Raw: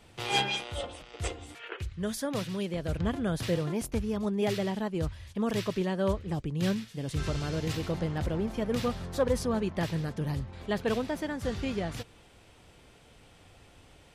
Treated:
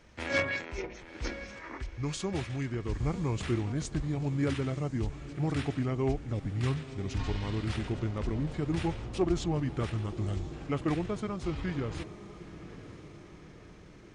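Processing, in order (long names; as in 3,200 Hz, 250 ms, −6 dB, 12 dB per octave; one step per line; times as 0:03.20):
pitch shifter −6.5 semitones
feedback delay with all-pass diffusion 1,003 ms, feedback 52%, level −14 dB
level −1 dB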